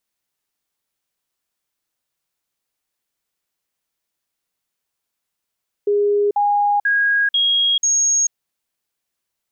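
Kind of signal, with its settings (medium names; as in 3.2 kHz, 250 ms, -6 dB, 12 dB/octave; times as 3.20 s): stepped sine 410 Hz up, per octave 1, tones 5, 0.44 s, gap 0.05 s -13.5 dBFS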